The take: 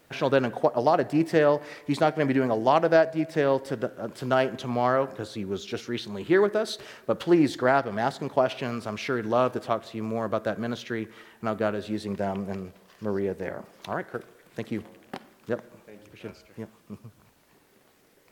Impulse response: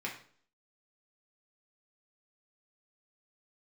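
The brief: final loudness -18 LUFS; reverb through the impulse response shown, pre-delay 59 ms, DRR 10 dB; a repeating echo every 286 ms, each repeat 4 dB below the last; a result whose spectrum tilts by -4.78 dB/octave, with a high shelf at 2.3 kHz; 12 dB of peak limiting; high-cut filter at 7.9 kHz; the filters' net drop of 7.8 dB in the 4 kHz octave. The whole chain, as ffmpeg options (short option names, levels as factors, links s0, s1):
-filter_complex "[0:a]lowpass=7900,highshelf=f=2300:g=-7,equalizer=f=4000:t=o:g=-3.5,alimiter=limit=0.0891:level=0:latency=1,aecho=1:1:286|572|858|1144|1430|1716|2002|2288|2574:0.631|0.398|0.25|0.158|0.0994|0.0626|0.0394|0.0249|0.0157,asplit=2[s0][s1];[1:a]atrim=start_sample=2205,adelay=59[s2];[s1][s2]afir=irnorm=-1:irlink=0,volume=0.224[s3];[s0][s3]amix=inputs=2:normalize=0,volume=4.47"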